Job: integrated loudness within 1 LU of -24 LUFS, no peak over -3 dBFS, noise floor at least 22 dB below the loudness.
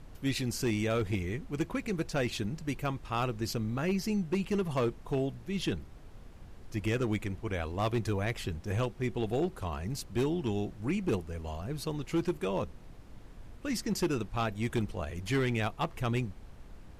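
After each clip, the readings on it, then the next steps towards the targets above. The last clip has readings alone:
clipped samples 1.3%; clipping level -23.5 dBFS; noise floor -50 dBFS; noise floor target -56 dBFS; loudness -33.5 LUFS; peak level -23.5 dBFS; loudness target -24.0 LUFS
-> clip repair -23.5 dBFS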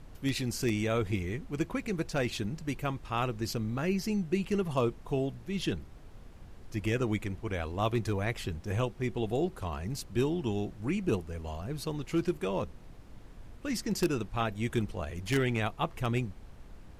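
clipped samples 0.0%; noise floor -50 dBFS; noise floor target -55 dBFS
-> noise print and reduce 6 dB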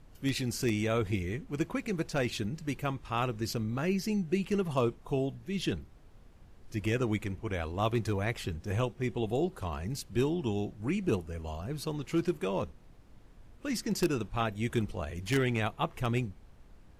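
noise floor -56 dBFS; loudness -33.0 LUFS; peak level -14.5 dBFS; loudness target -24.0 LUFS
-> trim +9 dB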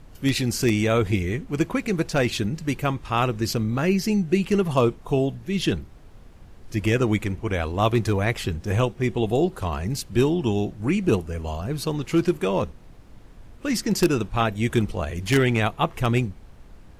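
loudness -24.0 LUFS; peak level -5.5 dBFS; noise floor -47 dBFS

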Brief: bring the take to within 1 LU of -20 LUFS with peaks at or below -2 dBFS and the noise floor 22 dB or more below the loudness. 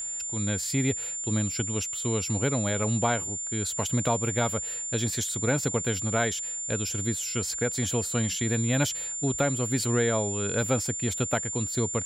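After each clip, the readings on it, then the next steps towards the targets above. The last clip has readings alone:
tick rate 19 per s; steady tone 7.2 kHz; tone level -31 dBFS; loudness -27.0 LUFS; peak level -11.5 dBFS; loudness target -20.0 LUFS
-> de-click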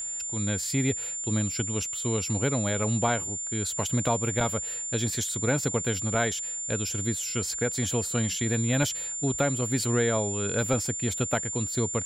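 tick rate 0 per s; steady tone 7.2 kHz; tone level -31 dBFS
-> band-stop 7.2 kHz, Q 30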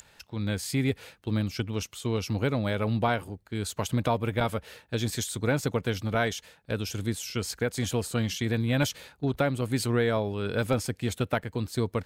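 steady tone not found; loudness -29.5 LUFS; peak level -12.0 dBFS; loudness target -20.0 LUFS
-> trim +9.5 dB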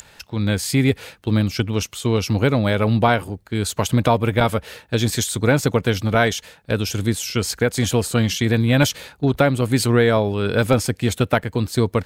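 loudness -20.0 LUFS; peak level -2.5 dBFS; noise floor -51 dBFS

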